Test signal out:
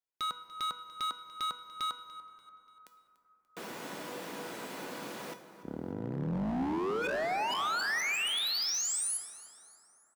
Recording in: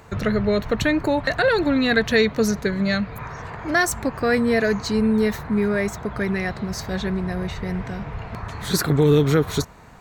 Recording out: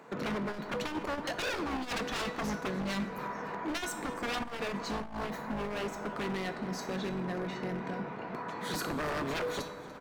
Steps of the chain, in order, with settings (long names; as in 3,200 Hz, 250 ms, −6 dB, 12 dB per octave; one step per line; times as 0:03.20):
sub-octave generator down 2 octaves, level +2 dB
high-pass filter 200 Hz 24 dB per octave
high-shelf EQ 2,800 Hz −10 dB
in parallel at +1 dB: downward compressor 6 to 1, threshold −28 dBFS
on the sum: tuned comb filter 490 Hz, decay 0.47 s, mix 80%
wave folding −31.5 dBFS
on a send: repeating echo 291 ms, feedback 46%, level −18.5 dB
on the sum: dense smooth reverb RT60 4 s, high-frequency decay 0.3×, DRR 10.5 dB
saturating transformer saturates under 99 Hz
level +3 dB